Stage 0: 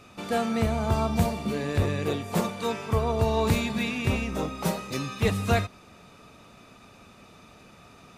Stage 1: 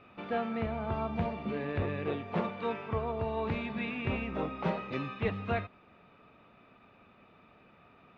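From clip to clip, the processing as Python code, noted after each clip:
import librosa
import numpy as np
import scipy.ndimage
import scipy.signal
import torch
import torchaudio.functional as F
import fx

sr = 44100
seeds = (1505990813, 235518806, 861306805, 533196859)

y = scipy.signal.sosfilt(scipy.signal.butter(4, 2900.0, 'lowpass', fs=sr, output='sos'), x)
y = fx.low_shelf(y, sr, hz=140.0, db=-6.5)
y = fx.rider(y, sr, range_db=10, speed_s=0.5)
y = F.gain(torch.from_numpy(y), -5.5).numpy()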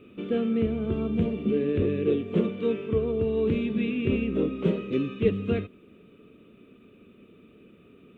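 y = fx.curve_eq(x, sr, hz=(140.0, 210.0, 430.0, 820.0, 1200.0, 1900.0, 3200.0, 4800.0, 7700.0), db=(0, 6, 8, -21, -10, -10, 2, -14, 5))
y = F.gain(torch.from_numpy(y), 4.5).numpy()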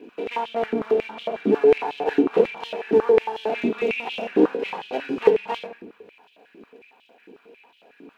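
y = fx.lower_of_two(x, sr, delay_ms=0.41)
y = fx.room_shoebox(y, sr, seeds[0], volume_m3=2300.0, walls='furnished', distance_m=1.8)
y = fx.filter_held_highpass(y, sr, hz=11.0, low_hz=330.0, high_hz=3200.0)
y = F.gain(torch.from_numpy(y), 2.0).numpy()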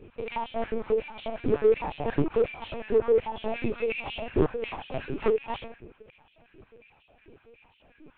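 y = np.clip(x, -10.0 ** (-10.5 / 20.0), 10.0 ** (-10.5 / 20.0))
y = fx.lpc_vocoder(y, sr, seeds[1], excitation='pitch_kept', order=10)
y = F.gain(torch.from_numpy(y), -5.0).numpy()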